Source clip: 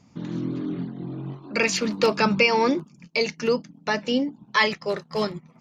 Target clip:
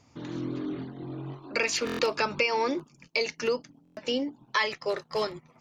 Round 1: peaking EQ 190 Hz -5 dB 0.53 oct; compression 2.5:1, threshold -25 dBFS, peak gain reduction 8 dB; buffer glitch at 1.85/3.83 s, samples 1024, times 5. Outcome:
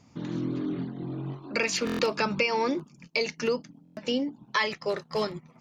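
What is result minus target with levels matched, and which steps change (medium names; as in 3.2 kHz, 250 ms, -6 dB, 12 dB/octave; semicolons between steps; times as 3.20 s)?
250 Hz band +3.0 dB
change: peaking EQ 190 Hz -17 dB 0.53 oct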